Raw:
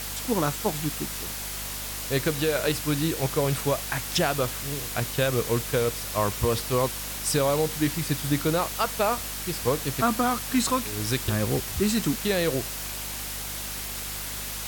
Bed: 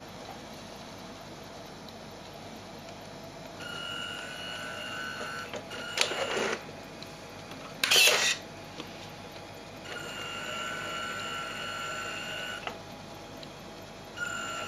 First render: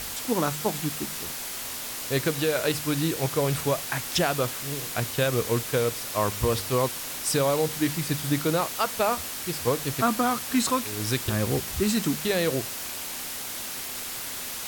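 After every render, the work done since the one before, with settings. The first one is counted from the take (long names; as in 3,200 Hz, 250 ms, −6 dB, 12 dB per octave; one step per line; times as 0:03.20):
hum removal 50 Hz, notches 4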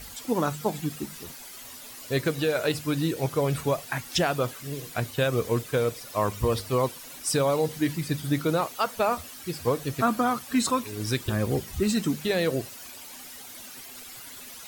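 broadband denoise 12 dB, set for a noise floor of −35 dBFS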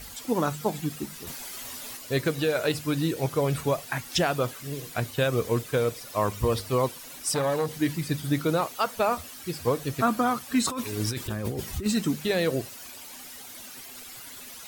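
0:01.27–0:01.97: clip gain +4.5 dB
0:07.34–0:07.80: saturating transformer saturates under 710 Hz
0:10.67–0:11.86: compressor whose output falls as the input rises −30 dBFS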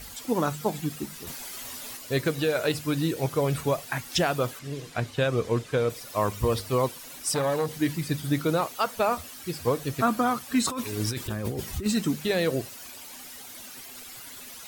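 0:04.59–0:05.90: high-frequency loss of the air 52 metres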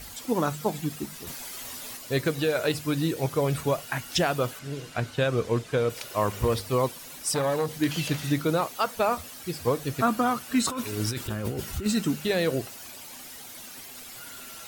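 mix in bed −14.5 dB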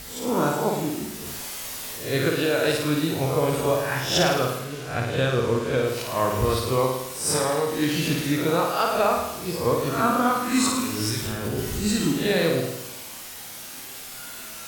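peak hold with a rise ahead of every peak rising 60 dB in 0.49 s
flutter between parallel walls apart 9.2 metres, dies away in 0.87 s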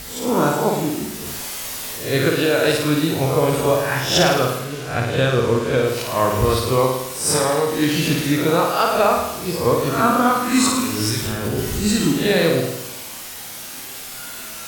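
level +5 dB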